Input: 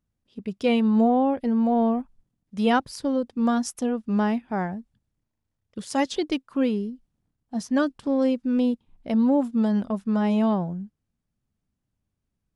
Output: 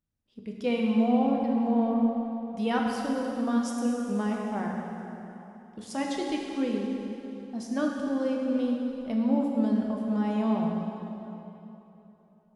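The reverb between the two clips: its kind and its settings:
dense smooth reverb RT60 3.3 s, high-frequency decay 0.8×, DRR −1 dB
level −8 dB

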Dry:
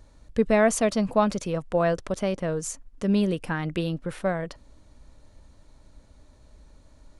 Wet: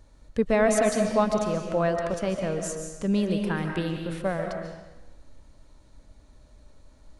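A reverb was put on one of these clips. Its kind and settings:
comb and all-pass reverb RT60 1.1 s, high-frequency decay 0.9×, pre-delay 100 ms, DRR 3.5 dB
level −2 dB

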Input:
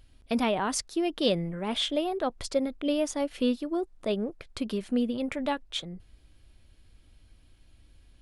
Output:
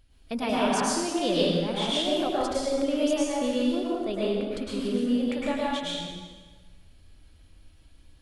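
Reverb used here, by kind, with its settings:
dense smooth reverb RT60 1.4 s, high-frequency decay 0.9×, pre-delay 95 ms, DRR −7 dB
level −4.5 dB

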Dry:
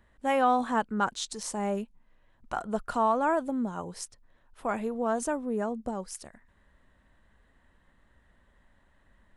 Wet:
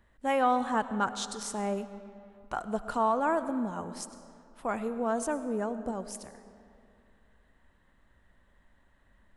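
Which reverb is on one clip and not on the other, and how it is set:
comb and all-pass reverb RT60 2.5 s, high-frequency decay 0.65×, pre-delay 55 ms, DRR 12 dB
level −1.5 dB

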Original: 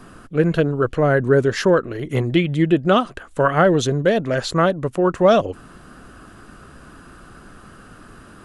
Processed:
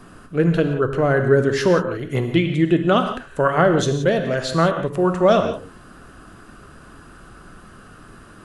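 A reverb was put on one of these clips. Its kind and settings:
reverb whose tail is shaped and stops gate 200 ms flat, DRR 6 dB
level −1.5 dB

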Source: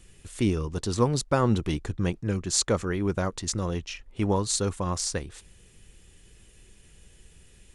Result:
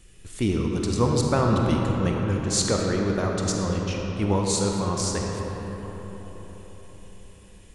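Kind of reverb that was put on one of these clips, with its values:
comb and all-pass reverb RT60 4.9 s, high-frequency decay 0.45×, pre-delay 5 ms, DRR −0.5 dB

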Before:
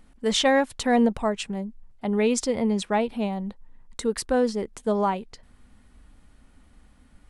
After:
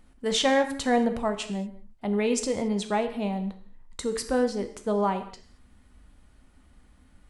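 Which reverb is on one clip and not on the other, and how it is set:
reverb whose tail is shaped and stops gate 250 ms falling, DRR 7.5 dB
level −2.5 dB

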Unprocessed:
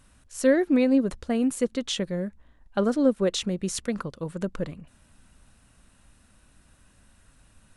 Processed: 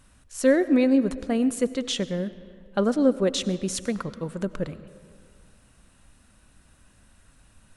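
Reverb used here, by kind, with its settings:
comb and all-pass reverb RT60 2.1 s, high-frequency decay 0.6×, pre-delay 55 ms, DRR 15 dB
level +1 dB

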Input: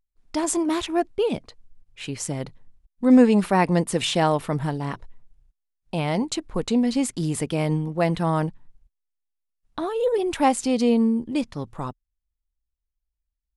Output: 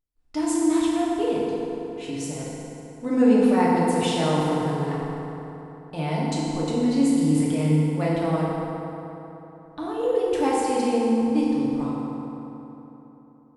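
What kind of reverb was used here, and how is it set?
feedback delay network reverb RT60 3.5 s, high-frequency decay 0.55×, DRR −6.5 dB
level −9 dB

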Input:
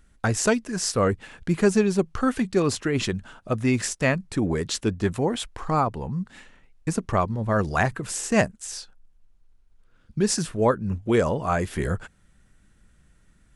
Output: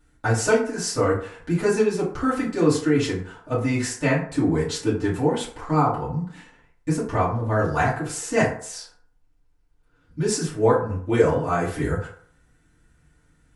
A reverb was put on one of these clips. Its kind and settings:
feedback delay network reverb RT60 0.55 s, low-frequency decay 0.75×, high-frequency decay 0.5×, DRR −10 dB
level −9 dB

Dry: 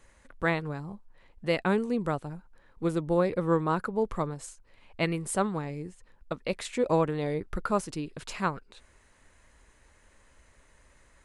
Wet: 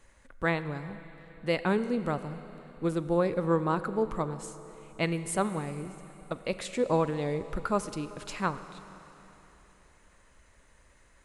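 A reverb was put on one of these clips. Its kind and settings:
four-comb reverb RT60 3.6 s, combs from 32 ms, DRR 12 dB
level −1 dB

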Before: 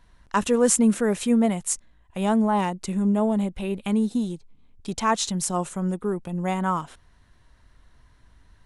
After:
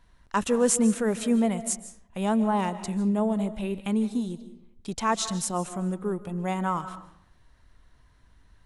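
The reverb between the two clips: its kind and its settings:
comb and all-pass reverb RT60 0.71 s, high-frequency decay 0.6×, pre-delay 110 ms, DRR 13 dB
level −3 dB

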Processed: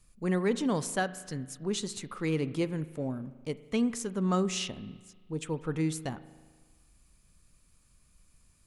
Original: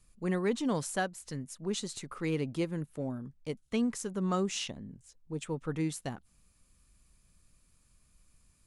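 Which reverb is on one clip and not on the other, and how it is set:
spring reverb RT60 1.5 s, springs 38 ms, chirp 45 ms, DRR 15 dB
level +2 dB

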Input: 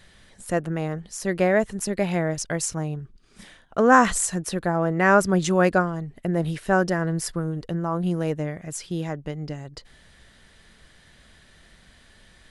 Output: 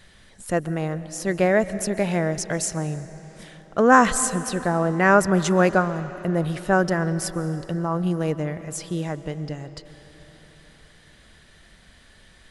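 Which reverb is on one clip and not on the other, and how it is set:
comb and all-pass reverb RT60 4.3 s, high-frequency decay 0.75×, pre-delay 95 ms, DRR 14 dB
level +1 dB

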